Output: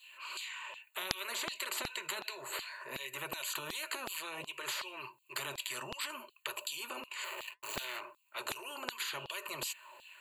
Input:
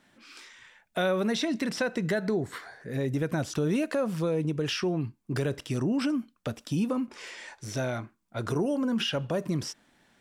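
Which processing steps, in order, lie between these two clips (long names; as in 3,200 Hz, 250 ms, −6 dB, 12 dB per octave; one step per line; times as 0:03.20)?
0:07.24–0:08.01: slack as between gear wheels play −35.5 dBFS
EQ curve with evenly spaced ripples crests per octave 1.4, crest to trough 16 dB
flanger 0.62 Hz, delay 1.6 ms, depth 6.3 ms, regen −70%
parametric band 840 Hz +5 dB 0.82 octaves
phaser with its sweep stopped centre 1,100 Hz, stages 8
auto-filter high-pass saw down 2.7 Hz 530–4,000 Hz
every bin compressed towards the loudest bin 10 to 1
level +5 dB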